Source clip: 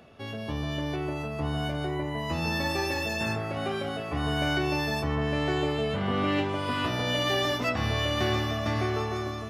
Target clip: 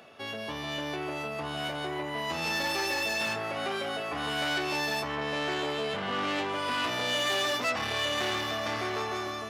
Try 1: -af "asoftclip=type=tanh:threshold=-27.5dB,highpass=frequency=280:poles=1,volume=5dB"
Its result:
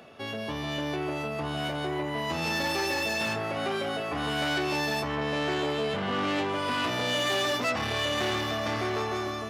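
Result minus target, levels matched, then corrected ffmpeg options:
250 Hz band +3.5 dB
-af "asoftclip=type=tanh:threshold=-27.5dB,highpass=frequency=640:poles=1,volume=5dB"

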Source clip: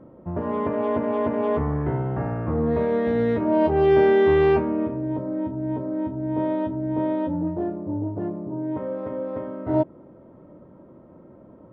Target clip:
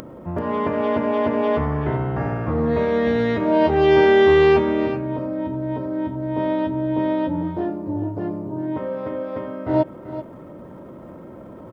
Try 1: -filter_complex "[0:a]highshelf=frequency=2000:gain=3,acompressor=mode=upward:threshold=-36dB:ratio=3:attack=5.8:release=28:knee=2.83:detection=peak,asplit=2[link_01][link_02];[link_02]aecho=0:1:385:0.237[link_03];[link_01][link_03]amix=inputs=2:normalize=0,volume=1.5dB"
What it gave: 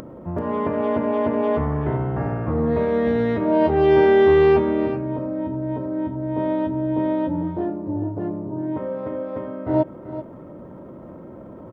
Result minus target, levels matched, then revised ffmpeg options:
4,000 Hz band −6.5 dB
-filter_complex "[0:a]highshelf=frequency=2000:gain=13,acompressor=mode=upward:threshold=-36dB:ratio=3:attack=5.8:release=28:knee=2.83:detection=peak,asplit=2[link_01][link_02];[link_02]aecho=0:1:385:0.237[link_03];[link_01][link_03]amix=inputs=2:normalize=0,volume=1.5dB"

